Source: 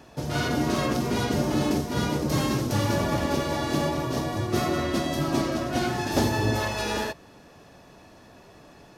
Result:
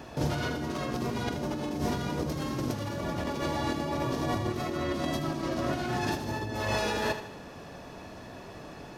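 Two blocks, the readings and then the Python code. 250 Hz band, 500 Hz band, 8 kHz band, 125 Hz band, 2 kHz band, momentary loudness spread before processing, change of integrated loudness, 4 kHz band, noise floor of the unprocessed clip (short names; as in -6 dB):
-6.0 dB, -5.0 dB, -8.0 dB, -6.0 dB, -4.5 dB, 4 LU, -5.5 dB, -6.0 dB, -51 dBFS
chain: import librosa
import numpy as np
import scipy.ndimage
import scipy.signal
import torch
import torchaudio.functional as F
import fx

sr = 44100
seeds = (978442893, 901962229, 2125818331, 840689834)

p1 = fx.peak_eq(x, sr, hz=11000.0, db=-4.5, octaves=1.9)
p2 = fx.over_compress(p1, sr, threshold_db=-32.0, ratio=-1.0)
y = p2 + fx.echo_feedback(p2, sr, ms=78, feedback_pct=44, wet_db=-10, dry=0)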